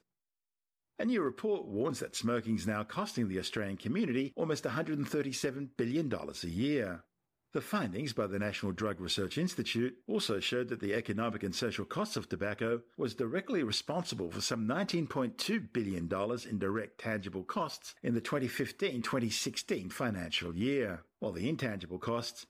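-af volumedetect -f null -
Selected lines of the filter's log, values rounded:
mean_volume: -35.3 dB
max_volume: -21.6 dB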